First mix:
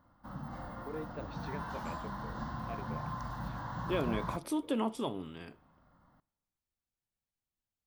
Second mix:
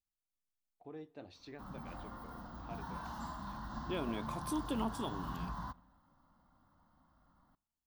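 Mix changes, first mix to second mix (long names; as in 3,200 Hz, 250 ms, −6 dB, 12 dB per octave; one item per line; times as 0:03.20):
background: entry +1.35 s
master: add graphic EQ with 10 bands 125 Hz −8 dB, 500 Hz −8 dB, 2,000 Hz −7 dB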